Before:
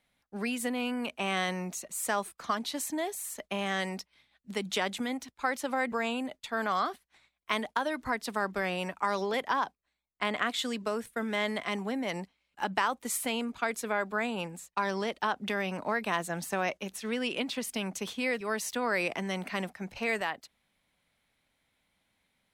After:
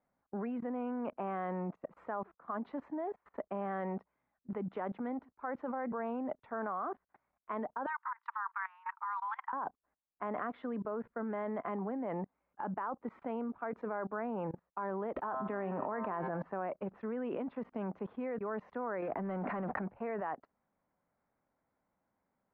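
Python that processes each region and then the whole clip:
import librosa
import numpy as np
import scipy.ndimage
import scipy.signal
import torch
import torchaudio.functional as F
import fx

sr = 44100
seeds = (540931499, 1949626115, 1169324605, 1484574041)

y = fx.chain(x, sr, fx.steep_highpass(hz=890.0, slope=96),
    fx.peak_eq(hz=8900.0, db=10.0, octaves=0.36),
    fx.over_compress(threshold_db=-37.0, ratio=-1.0), at=(7.86, 9.53))
y = fx.chain(y, sr, fx.brickwall_lowpass(high_hz=4800.0),
    fx.comb_fb(f0_hz=130.0, decay_s=1.0, harmonics='all', damping=0.0, mix_pct=70),
    fx.env_flatten(amount_pct=100), at=(15.16, 16.42))
y = fx.chain(y, sr, fx.leveller(passes=3),
    fx.env_flatten(amount_pct=70), at=(19.02, 19.88))
y = scipy.signal.sosfilt(scipy.signal.butter(4, 1300.0, 'lowpass', fs=sr, output='sos'), y)
y = fx.low_shelf(y, sr, hz=110.0, db=-11.5)
y = fx.level_steps(y, sr, step_db=23)
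y = F.gain(torch.from_numpy(y), 9.0).numpy()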